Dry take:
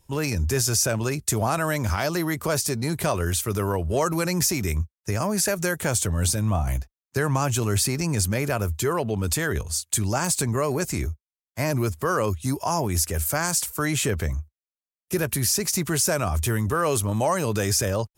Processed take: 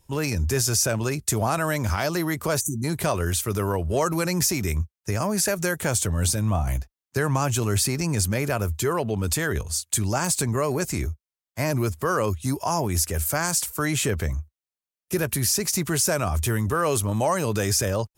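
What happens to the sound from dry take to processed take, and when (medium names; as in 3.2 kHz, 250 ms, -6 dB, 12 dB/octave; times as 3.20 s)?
2.61–2.84 s: spectral selection erased 380–5800 Hz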